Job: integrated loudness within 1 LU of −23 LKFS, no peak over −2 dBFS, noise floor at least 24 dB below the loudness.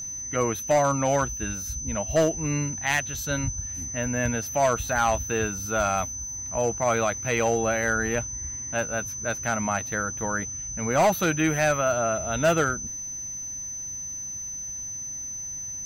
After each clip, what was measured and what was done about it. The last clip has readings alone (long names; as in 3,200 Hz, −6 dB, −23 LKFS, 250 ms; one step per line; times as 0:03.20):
share of clipped samples 0.8%; peaks flattened at −15.5 dBFS; interfering tone 6,100 Hz; level of the tone −32 dBFS; integrated loudness −26.0 LKFS; sample peak −15.5 dBFS; target loudness −23.0 LKFS
→ clipped peaks rebuilt −15.5 dBFS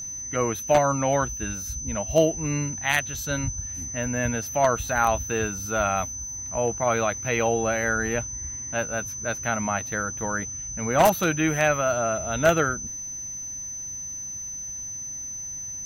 share of clipped samples 0.0%; interfering tone 6,100 Hz; level of the tone −32 dBFS
→ notch filter 6,100 Hz, Q 30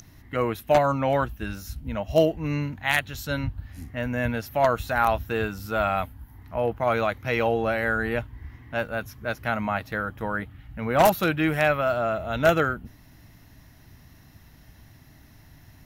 interfering tone none found; integrated loudness −25.5 LKFS; sample peak −6.0 dBFS; target loudness −23.0 LKFS
→ level +2.5 dB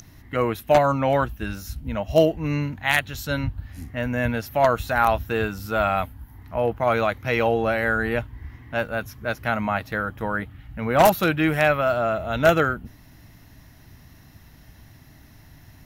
integrated loudness −23.0 LKFS; sample peak −3.5 dBFS; background noise floor −50 dBFS